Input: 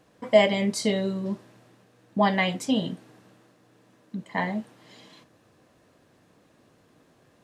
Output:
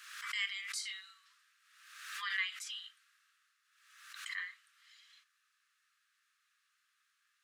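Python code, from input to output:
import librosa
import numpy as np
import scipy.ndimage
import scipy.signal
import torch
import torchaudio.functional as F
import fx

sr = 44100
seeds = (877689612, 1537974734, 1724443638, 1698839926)

y = scipy.signal.sosfilt(scipy.signal.butter(16, 1200.0, 'highpass', fs=sr, output='sos'), x)
y = fx.pre_swell(y, sr, db_per_s=54.0)
y = y * 10.0 ** (-9.0 / 20.0)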